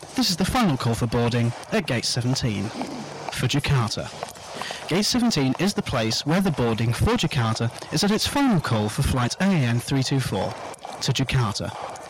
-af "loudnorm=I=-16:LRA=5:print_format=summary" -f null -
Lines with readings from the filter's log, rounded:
Input Integrated:    -23.4 LUFS
Input True Peak:     -14.1 dBTP
Input LRA:             2.0 LU
Input Threshold:     -33.6 LUFS